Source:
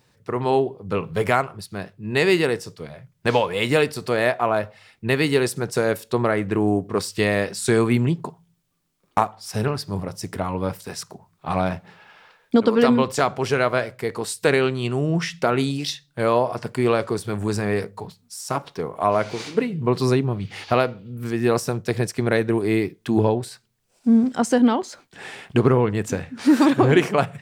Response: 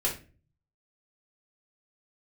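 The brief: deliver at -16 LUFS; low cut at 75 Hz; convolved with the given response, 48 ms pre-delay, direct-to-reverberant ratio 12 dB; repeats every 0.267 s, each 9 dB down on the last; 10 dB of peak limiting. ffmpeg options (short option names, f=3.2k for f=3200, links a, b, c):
-filter_complex "[0:a]highpass=75,alimiter=limit=-13dB:level=0:latency=1,aecho=1:1:267|534|801|1068:0.355|0.124|0.0435|0.0152,asplit=2[a][b];[1:a]atrim=start_sample=2205,adelay=48[c];[b][c]afir=irnorm=-1:irlink=0,volume=-19.5dB[d];[a][d]amix=inputs=2:normalize=0,volume=9dB"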